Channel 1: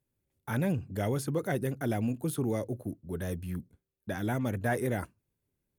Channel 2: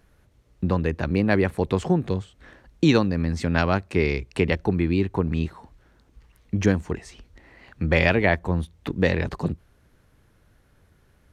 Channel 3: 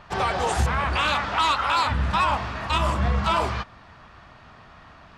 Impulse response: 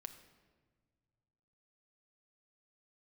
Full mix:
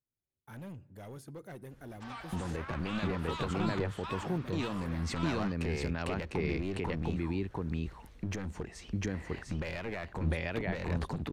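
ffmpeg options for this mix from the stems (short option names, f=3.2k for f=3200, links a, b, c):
-filter_complex "[0:a]asoftclip=type=hard:threshold=-26dB,volume=-16.5dB,asplit=3[a][b][c];[b]volume=-7.5dB[d];[1:a]alimiter=limit=-17dB:level=0:latency=1:release=138,adelay=1700,volume=1dB,asplit=3[e][f][g];[f]volume=-22dB[h];[g]volume=-8.5dB[i];[2:a]highpass=890,adelay=1900,volume=-18.5dB[j];[c]apad=whole_len=574551[k];[e][k]sidechaincompress=threshold=-51dB:ratio=8:attack=16:release=297[l];[a][l]amix=inputs=2:normalize=0,aeval=exprs='clip(val(0),-1,0.0376)':c=same,alimiter=level_in=3.5dB:limit=-24dB:level=0:latency=1:release=485,volume=-3.5dB,volume=0dB[m];[3:a]atrim=start_sample=2205[n];[d][h]amix=inputs=2:normalize=0[o];[o][n]afir=irnorm=-1:irlink=0[p];[i]aecho=0:1:701:1[q];[j][m][p][q]amix=inputs=4:normalize=0,equalizer=f=16k:w=0.46:g=-2.5"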